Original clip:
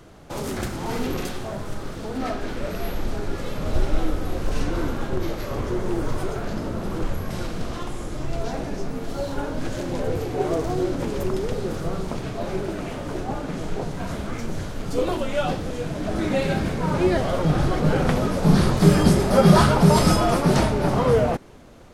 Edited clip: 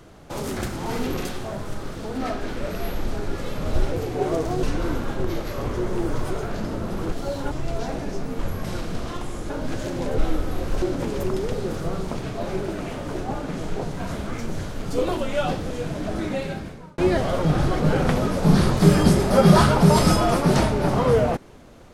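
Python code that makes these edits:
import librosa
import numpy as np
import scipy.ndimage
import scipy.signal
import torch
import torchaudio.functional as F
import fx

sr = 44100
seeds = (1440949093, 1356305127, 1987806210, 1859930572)

y = fx.edit(x, sr, fx.swap(start_s=3.92, length_s=0.64, other_s=10.11, other_length_s=0.71),
    fx.swap(start_s=7.05, length_s=1.11, other_s=9.04, other_length_s=0.39),
    fx.fade_out_span(start_s=15.94, length_s=1.04), tone=tone)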